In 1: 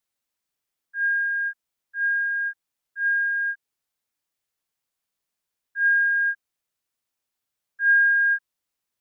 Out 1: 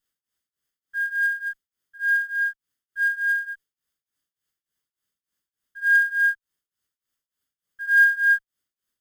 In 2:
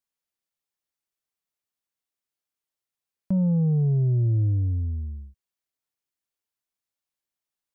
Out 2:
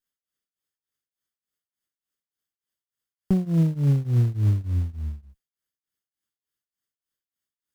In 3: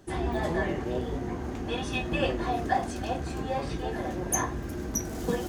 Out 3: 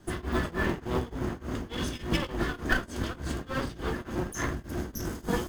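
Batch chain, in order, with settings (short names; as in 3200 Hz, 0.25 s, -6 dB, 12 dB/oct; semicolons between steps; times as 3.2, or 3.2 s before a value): minimum comb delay 0.62 ms; tremolo triangle 3.4 Hz, depth 95%; in parallel at -5 dB: short-mantissa float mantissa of 2-bit; on the sum: gain +1 dB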